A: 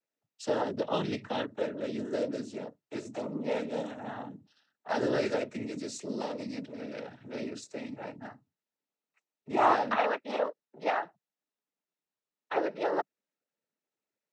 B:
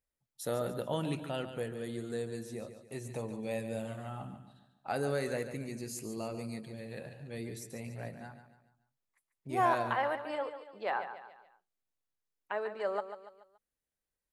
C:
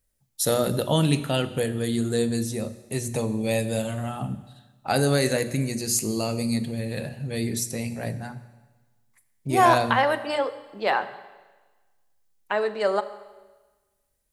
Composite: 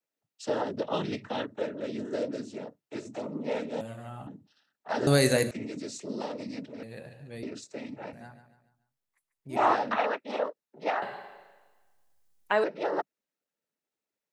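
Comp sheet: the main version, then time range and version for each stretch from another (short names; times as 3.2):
A
3.81–4.27 from B
5.07–5.51 from C
6.83–7.43 from B
8.13–9.56 from B
11.02–12.64 from C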